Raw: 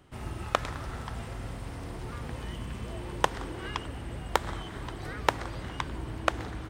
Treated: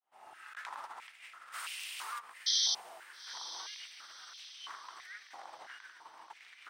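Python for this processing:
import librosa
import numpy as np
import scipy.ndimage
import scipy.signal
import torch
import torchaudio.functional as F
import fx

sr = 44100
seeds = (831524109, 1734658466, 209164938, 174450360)

y = fx.fade_in_head(x, sr, length_s=1.46)
y = fx.tilt_eq(y, sr, slope=3.5, at=(1.52, 2.18), fade=0.02)
y = fx.over_compress(y, sr, threshold_db=-44.0, ratio=-1.0)
y = fx.spec_paint(y, sr, seeds[0], shape='noise', start_s=2.46, length_s=0.29, low_hz=3100.0, high_hz=6200.0, level_db=-24.0)
y = fx.echo_diffused(y, sr, ms=901, feedback_pct=41, wet_db=-12.5)
y = fx.filter_held_highpass(y, sr, hz=3.0, low_hz=780.0, high_hz=2700.0)
y = F.gain(torch.from_numpy(y), -7.0).numpy()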